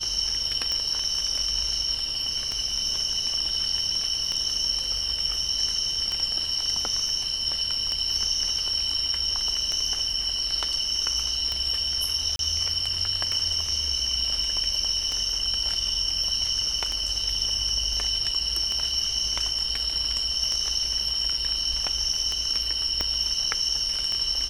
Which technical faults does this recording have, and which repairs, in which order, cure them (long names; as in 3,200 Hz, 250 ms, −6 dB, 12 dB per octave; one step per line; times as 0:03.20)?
scratch tick 33 1/3 rpm −14 dBFS
0:12.36–0:12.39: drop-out 32 ms
0:23.01: click −11 dBFS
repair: click removal
repair the gap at 0:12.36, 32 ms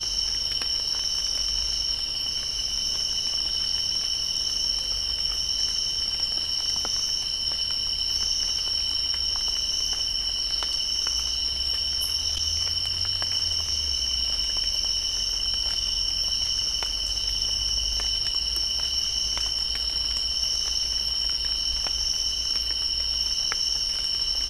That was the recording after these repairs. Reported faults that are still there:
0:23.01: click